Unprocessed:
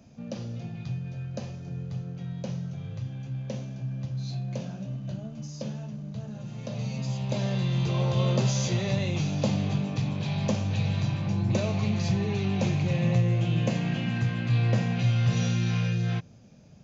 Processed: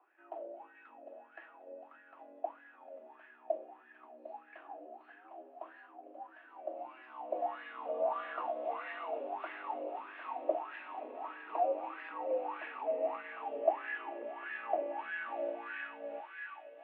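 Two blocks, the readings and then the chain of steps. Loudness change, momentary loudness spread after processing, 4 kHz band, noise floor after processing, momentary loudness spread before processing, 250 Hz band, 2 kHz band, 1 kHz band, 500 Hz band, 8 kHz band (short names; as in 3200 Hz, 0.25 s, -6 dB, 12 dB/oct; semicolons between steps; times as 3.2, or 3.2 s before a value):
-10.5 dB, 18 LU, -22.5 dB, -61 dBFS, 12 LU, -24.0 dB, -4.5 dB, +2.5 dB, -2.0 dB, n/a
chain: thinning echo 0.753 s, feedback 69%, high-pass 990 Hz, level -4.5 dB; wah 1.6 Hz 440–1600 Hz, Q 8.5; mistuned SSB +110 Hz 210–2800 Hz; gain +8.5 dB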